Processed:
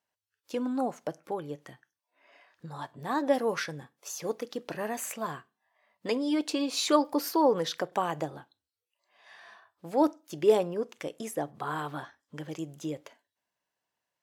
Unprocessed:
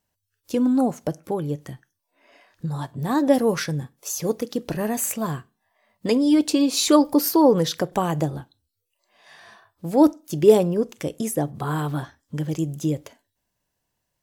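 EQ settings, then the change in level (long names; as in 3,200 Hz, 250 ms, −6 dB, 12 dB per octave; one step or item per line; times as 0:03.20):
high-pass filter 1,000 Hz 6 dB per octave
high-shelf EQ 3,600 Hz −9.5 dB
high-shelf EQ 7,900 Hz −5.5 dB
0.0 dB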